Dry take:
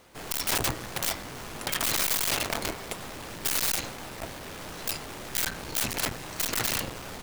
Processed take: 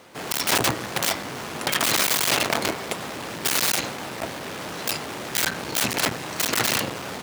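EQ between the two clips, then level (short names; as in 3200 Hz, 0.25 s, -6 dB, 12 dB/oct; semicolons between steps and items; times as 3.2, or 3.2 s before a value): HPF 130 Hz 12 dB/oct; high shelf 7200 Hz -6 dB; +8.0 dB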